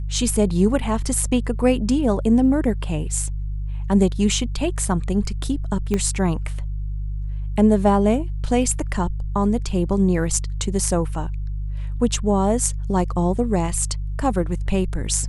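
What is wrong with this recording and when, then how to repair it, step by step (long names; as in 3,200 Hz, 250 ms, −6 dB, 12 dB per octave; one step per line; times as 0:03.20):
mains hum 50 Hz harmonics 3 −26 dBFS
0:05.94: click −10 dBFS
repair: click removal
hum removal 50 Hz, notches 3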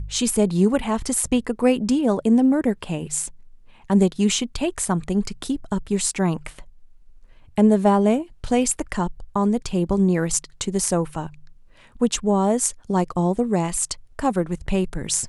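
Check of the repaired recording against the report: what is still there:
0:05.94: click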